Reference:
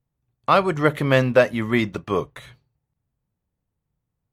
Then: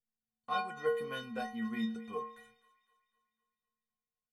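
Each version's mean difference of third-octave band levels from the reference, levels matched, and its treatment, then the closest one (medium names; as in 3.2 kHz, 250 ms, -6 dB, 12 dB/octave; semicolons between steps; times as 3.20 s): 7.5 dB: inharmonic resonator 220 Hz, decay 0.68 s, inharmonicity 0.03; on a send: feedback echo behind a high-pass 252 ms, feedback 51%, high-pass 1.5 kHz, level -16 dB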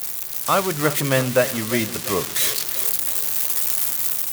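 12.0 dB: zero-crossing glitches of -10.5 dBFS; on a send: two-band feedback delay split 340 Hz, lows 154 ms, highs 347 ms, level -15.5 dB; on the sum: level rider gain up to 7 dB; trim -4 dB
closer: first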